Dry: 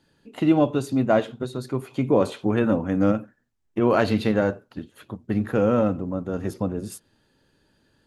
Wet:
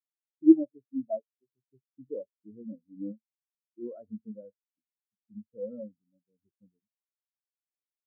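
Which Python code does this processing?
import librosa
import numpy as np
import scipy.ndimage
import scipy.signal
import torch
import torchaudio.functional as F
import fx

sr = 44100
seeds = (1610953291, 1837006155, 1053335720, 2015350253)

y = fx.spectral_expand(x, sr, expansion=4.0)
y = F.gain(torch.from_numpy(y), -1.5).numpy()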